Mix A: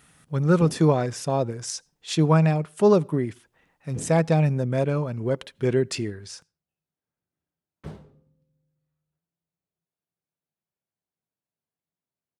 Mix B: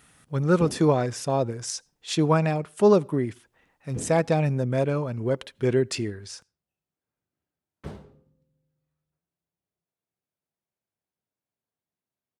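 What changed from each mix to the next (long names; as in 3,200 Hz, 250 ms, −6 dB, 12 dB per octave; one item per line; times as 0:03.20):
background: send +10.0 dB
master: add parametric band 160 Hz −6 dB 0.24 octaves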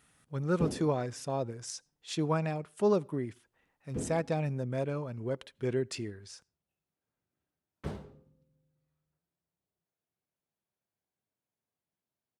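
speech −9.0 dB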